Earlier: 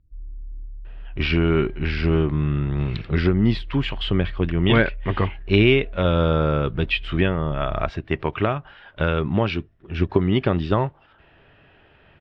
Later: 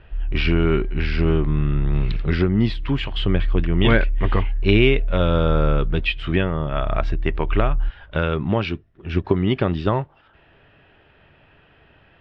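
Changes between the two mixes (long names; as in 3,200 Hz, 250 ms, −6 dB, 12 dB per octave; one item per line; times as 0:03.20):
speech: entry −0.85 s
background +11.5 dB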